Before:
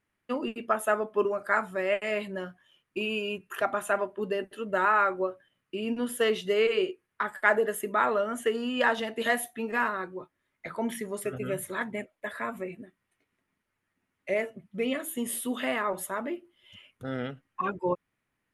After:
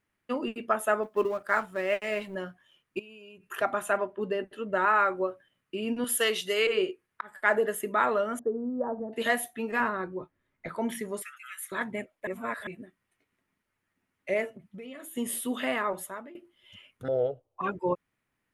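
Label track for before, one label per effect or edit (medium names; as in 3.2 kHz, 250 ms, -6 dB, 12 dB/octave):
1.030000	2.350000	companding laws mixed up coded by A
2.990000	3.470000	compression 16:1, threshold -45 dBFS
3.970000	4.880000	treble shelf 5.5 kHz -9.5 dB
6.040000	6.670000	tilt EQ +3 dB/octave
7.210000	7.640000	fade in equal-power
8.390000	9.130000	Gaussian low-pass sigma 11 samples
9.800000	10.690000	tilt EQ -2 dB/octave
11.220000	11.720000	Chebyshev high-pass 1.2 kHz, order 5
12.270000	12.670000	reverse
14.540000	15.160000	compression 5:1, threshold -41 dBFS
15.860000	16.350000	fade out, to -20 dB
17.080000	17.610000	FFT filter 120 Hz 0 dB, 210 Hz -21 dB, 450 Hz +12 dB, 650 Hz +12 dB, 1.8 kHz -28 dB, 3.4 kHz -11 dB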